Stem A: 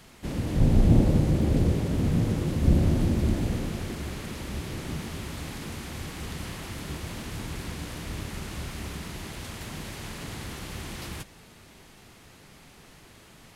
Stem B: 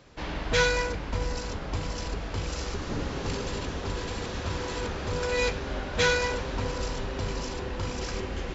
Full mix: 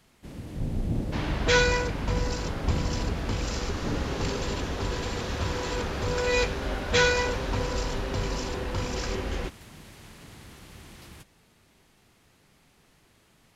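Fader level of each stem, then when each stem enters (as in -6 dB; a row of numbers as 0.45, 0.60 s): -10.0, +2.0 dB; 0.00, 0.95 s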